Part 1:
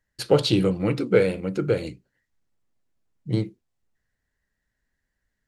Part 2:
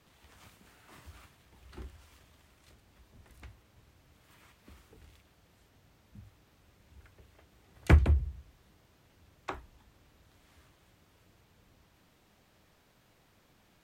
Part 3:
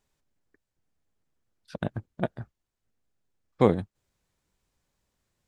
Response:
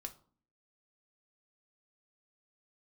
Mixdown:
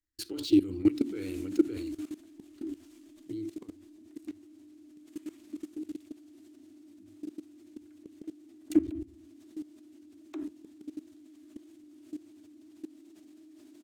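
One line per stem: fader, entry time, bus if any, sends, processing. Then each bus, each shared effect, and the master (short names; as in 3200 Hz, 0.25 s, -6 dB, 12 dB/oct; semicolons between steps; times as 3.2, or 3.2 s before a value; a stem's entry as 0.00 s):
+0.5 dB, 0.00 s, no send, limiter -15 dBFS, peak gain reduction 9 dB
-10.5 dB, 0.85 s, no send, HPF 130 Hz 24 dB/oct; small resonant body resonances 300/620 Hz, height 17 dB, ringing for 40 ms; fast leveller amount 50%
-10.0 dB, 0.00 s, no send, LPF 1300 Hz; bell 230 Hz -13 dB 2.5 oct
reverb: off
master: EQ curve 100 Hz 0 dB, 150 Hz -28 dB, 310 Hz +12 dB, 510 Hz -18 dB, 7500 Hz +4 dB; level quantiser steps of 18 dB; decimation joined by straight lines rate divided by 2×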